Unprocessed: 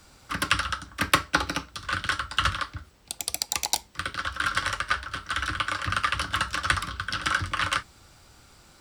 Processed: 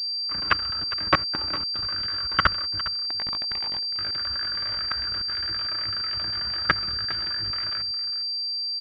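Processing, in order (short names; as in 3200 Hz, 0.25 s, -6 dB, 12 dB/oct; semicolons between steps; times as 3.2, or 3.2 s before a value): gliding pitch shift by +2 st starting unshifted; level quantiser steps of 22 dB; sample leveller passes 2; requantised 12-bit, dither triangular; echo 0.407 s -14.5 dB; pulse-width modulation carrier 4700 Hz; gain +2.5 dB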